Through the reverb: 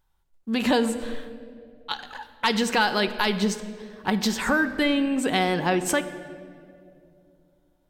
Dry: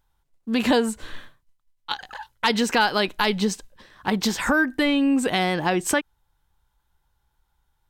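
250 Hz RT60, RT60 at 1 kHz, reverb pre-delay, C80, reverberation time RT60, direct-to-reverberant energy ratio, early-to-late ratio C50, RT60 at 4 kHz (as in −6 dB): 3.2 s, 2.0 s, 5 ms, 13.0 dB, 2.6 s, 8.5 dB, 12.0 dB, 1.4 s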